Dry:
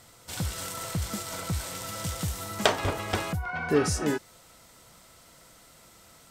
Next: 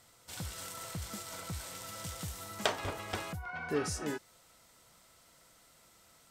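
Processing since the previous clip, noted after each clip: bass shelf 500 Hz -3.5 dB; trim -7.5 dB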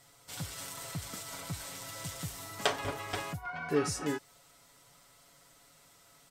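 comb 7.1 ms, depth 71%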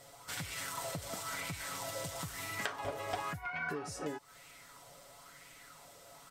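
compression 8:1, threshold -42 dBFS, peak gain reduction 18.5 dB; sweeping bell 1 Hz 530–2400 Hz +11 dB; trim +3 dB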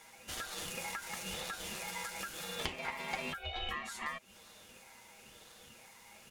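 ring modulator 1.5 kHz; trim +2 dB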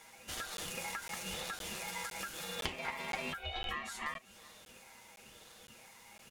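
delay 390 ms -22.5 dB; crackling interface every 0.51 s, samples 512, zero, from 0.57 s

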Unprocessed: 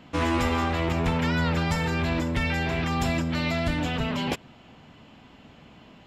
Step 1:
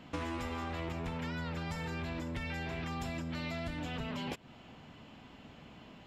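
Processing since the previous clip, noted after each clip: compression 6:1, threshold -33 dBFS, peak gain reduction 12 dB; trim -3 dB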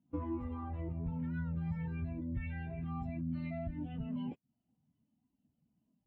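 spectral contrast expander 2.5:1; trim -1.5 dB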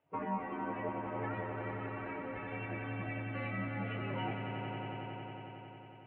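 mistuned SSB -54 Hz 300–2800 Hz; spectral gate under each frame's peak -10 dB weak; echo with a slow build-up 91 ms, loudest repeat 5, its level -8.5 dB; trim +16 dB

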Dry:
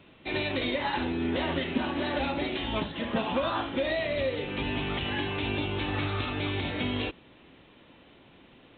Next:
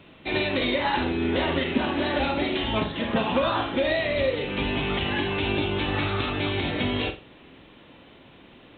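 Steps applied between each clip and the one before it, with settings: flutter echo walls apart 7.8 m, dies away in 0.29 s; trim +4.5 dB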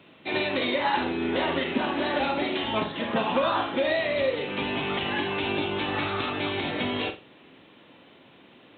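Bessel high-pass 160 Hz, order 2; dynamic bell 960 Hz, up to +3 dB, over -36 dBFS, Q 0.88; trim -2 dB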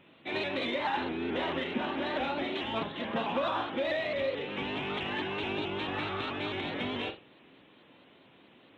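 in parallel at -11 dB: saturation -26.5 dBFS, distortion -11 dB; on the sum: vibrato with a chosen wave saw up 4.6 Hz, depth 100 cents; trim -7.5 dB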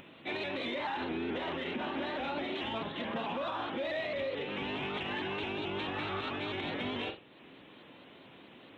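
peak limiter -28 dBFS, peak gain reduction 8 dB; upward compressor, threshold -47 dBFS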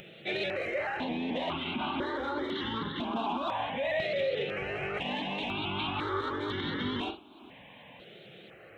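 stepped phaser 2 Hz 270–2500 Hz; trim +6.5 dB

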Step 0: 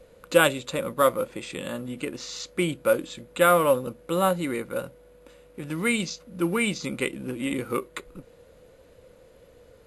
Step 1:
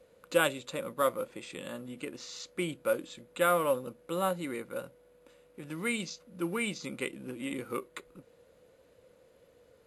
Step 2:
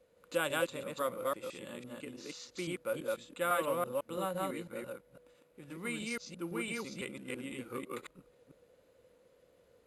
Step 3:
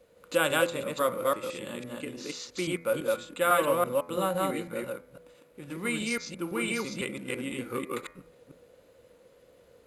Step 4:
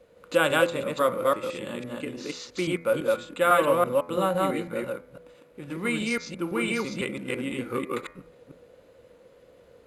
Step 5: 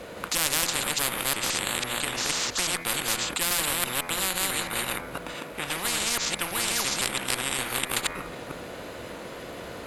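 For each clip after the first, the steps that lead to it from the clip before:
high-pass 130 Hz 6 dB/octave; trim -7.5 dB
chunks repeated in reverse 167 ms, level 0 dB; trim -7 dB
de-hum 84.93 Hz, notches 29; trim +8 dB
treble shelf 5.3 kHz -8.5 dB; trim +4 dB
bass shelf 210 Hz -7.5 dB; Chebyshev shaper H 2 -13 dB, 6 -30 dB, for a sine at -6 dBFS; spectrum-flattening compressor 10:1

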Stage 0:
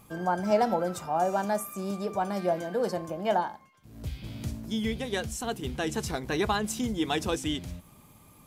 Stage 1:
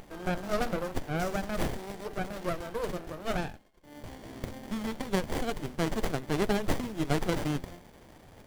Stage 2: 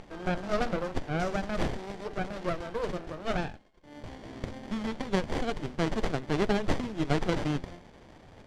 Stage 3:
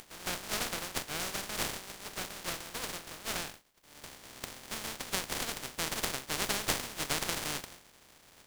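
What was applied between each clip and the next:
RIAA curve recording; sliding maximum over 33 samples
low-pass 5.7 kHz 12 dB/octave; trim +1 dB
spectral contrast reduction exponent 0.26; trim -7 dB

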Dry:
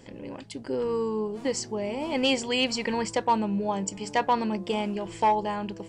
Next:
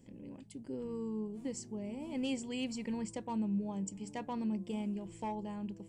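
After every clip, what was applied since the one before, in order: FFT filter 110 Hz 0 dB, 220 Hz +4 dB, 440 Hz -6 dB, 1.5 kHz -13 dB, 2.4 kHz -8 dB, 4.7 kHz -11 dB, 8.2 kHz 0 dB; trim -9 dB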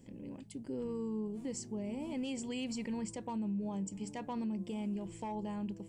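peak limiter -33.5 dBFS, peak gain reduction 7.5 dB; trim +2.5 dB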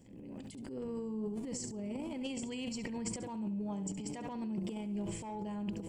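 flutter echo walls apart 11.7 m, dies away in 0.38 s; transient shaper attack -7 dB, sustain +11 dB; trim -1.5 dB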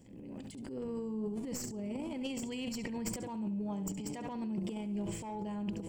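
tracing distortion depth 0.031 ms; trim +1 dB

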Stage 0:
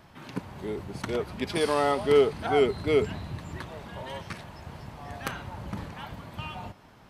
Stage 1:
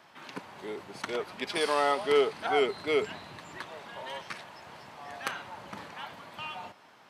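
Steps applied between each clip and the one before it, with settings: frequency weighting A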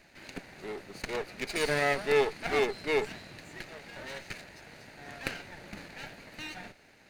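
comb filter that takes the minimum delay 0.45 ms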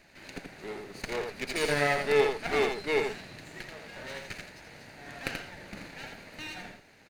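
delay 83 ms -5 dB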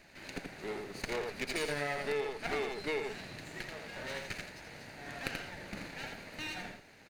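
compression 6:1, threshold -32 dBFS, peak gain reduction 13 dB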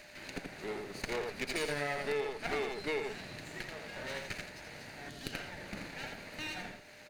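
time-frequency box 5.09–5.34 s, 470–2800 Hz -10 dB; whistle 600 Hz -61 dBFS; tape noise reduction on one side only encoder only

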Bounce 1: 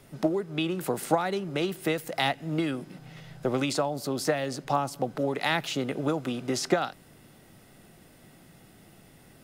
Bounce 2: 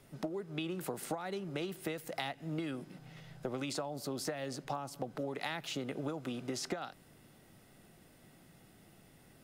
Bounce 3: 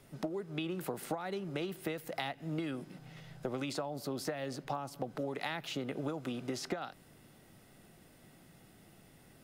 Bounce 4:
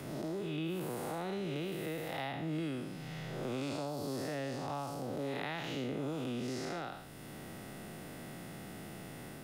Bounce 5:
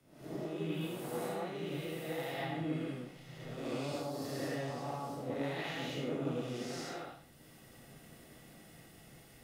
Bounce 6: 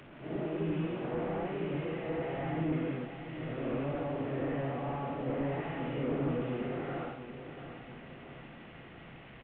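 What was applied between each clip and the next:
compression 12:1, threshold -27 dBFS, peak gain reduction 10.5 dB; trim -6.5 dB
dynamic bell 7.6 kHz, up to -5 dB, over -57 dBFS, Q 0.89; trim +1 dB
spectral blur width 204 ms; three bands compressed up and down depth 70%; trim +3.5 dB
gated-style reverb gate 260 ms rising, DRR -7 dB; three bands expanded up and down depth 100%; trim -8 dB
one-bit delta coder 16 kbps, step -51 dBFS; feedback delay 688 ms, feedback 42%, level -11 dB; trim +5 dB

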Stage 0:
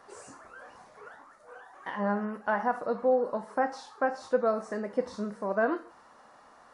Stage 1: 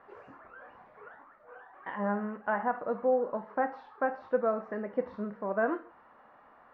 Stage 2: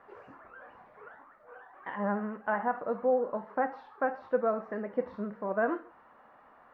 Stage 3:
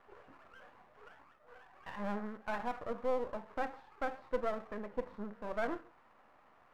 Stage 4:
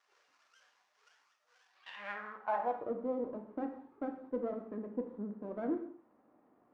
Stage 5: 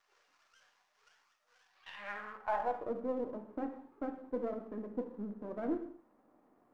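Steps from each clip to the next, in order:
low-pass 2.6 kHz 24 dB/octave; trim -2 dB
vibrato 13 Hz 32 cents
partial rectifier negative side -12 dB; trim -3.5 dB
band-pass sweep 5.8 kHz -> 280 Hz, 1.65–2.97 s; gated-style reverb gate 250 ms falling, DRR 6.5 dB; trim +8.5 dB
partial rectifier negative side -3 dB; trim +1 dB

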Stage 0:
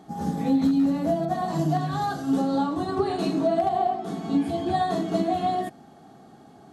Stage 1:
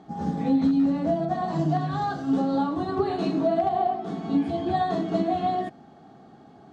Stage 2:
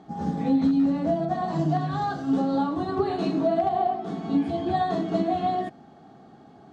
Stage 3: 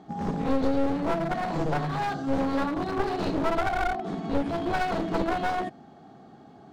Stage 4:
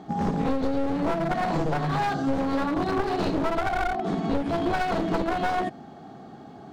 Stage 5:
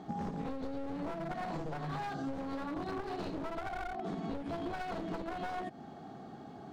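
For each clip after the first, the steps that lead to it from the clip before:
distance through air 110 m
no audible change
one-sided wavefolder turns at -26 dBFS
compression, threshold -27 dBFS, peak gain reduction 8.5 dB; trim +6 dB
compression 6:1, threshold -31 dBFS, peak gain reduction 11.5 dB; trim -4.5 dB

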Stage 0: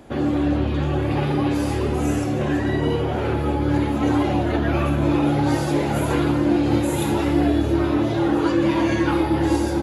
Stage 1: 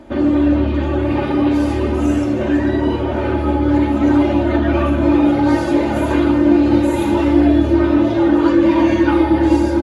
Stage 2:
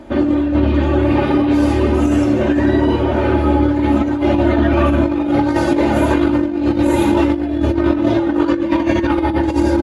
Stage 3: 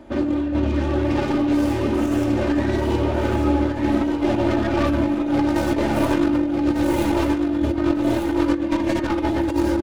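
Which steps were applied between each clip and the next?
low-pass 3 kHz 6 dB/octave; comb 3.3 ms, depth 71%; trim +3 dB
compressor with a negative ratio -15 dBFS, ratio -0.5; trim +1.5 dB
tracing distortion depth 0.18 ms; on a send: feedback delay 1198 ms, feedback 23%, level -6.5 dB; on the sum: trim -6.5 dB

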